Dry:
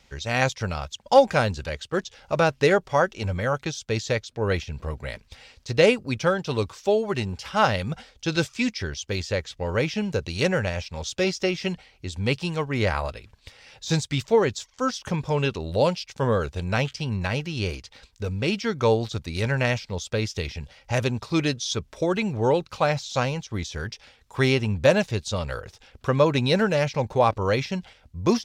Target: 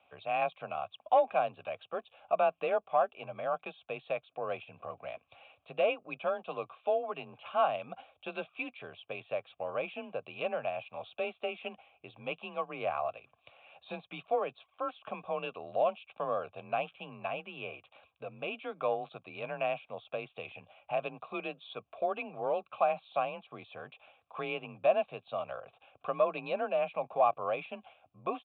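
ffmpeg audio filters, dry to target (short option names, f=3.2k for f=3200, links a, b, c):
-filter_complex "[0:a]asplit=2[a][b];[b]acompressor=threshold=-31dB:ratio=6,volume=0.5dB[c];[a][c]amix=inputs=2:normalize=0,asoftclip=type=tanh:threshold=-6dB,aresample=8000,aresample=44100,afreqshift=31,asplit=3[d][e][f];[d]bandpass=f=730:t=q:w=8,volume=0dB[g];[e]bandpass=f=1.09k:t=q:w=8,volume=-6dB[h];[f]bandpass=f=2.44k:t=q:w=8,volume=-9dB[i];[g][h][i]amix=inputs=3:normalize=0"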